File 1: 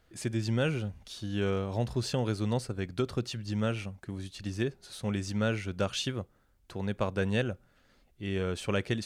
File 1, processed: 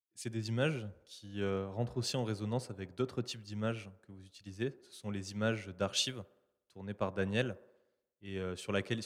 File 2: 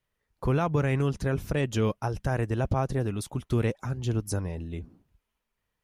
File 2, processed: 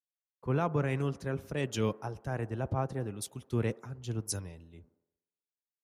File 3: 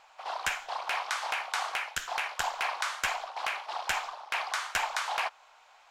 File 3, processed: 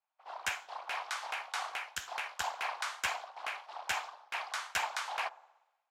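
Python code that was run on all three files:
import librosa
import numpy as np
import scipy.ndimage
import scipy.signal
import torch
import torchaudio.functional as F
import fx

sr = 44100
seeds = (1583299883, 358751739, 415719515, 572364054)

p1 = scipy.signal.sosfilt(scipy.signal.butter(2, 93.0, 'highpass', fs=sr, output='sos'), x)
p2 = p1 + fx.echo_wet_bandpass(p1, sr, ms=60, feedback_pct=84, hz=630.0, wet_db=-19, dry=0)
p3 = fx.band_widen(p2, sr, depth_pct=100)
y = F.gain(torch.from_numpy(p3), -5.5).numpy()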